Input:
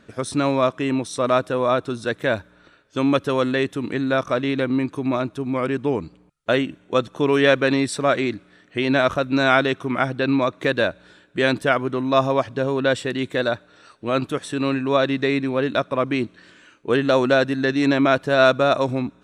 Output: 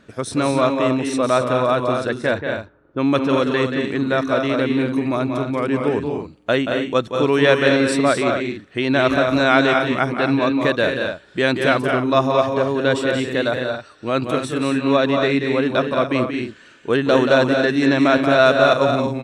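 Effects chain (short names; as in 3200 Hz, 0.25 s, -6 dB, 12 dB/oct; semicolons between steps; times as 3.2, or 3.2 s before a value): 2.07–3.8 low-pass opened by the level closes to 510 Hz, open at -15 dBFS; loudspeakers at several distances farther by 62 m -7 dB, 76 m -6 dB, 92 m -11 dB; gain +1 dB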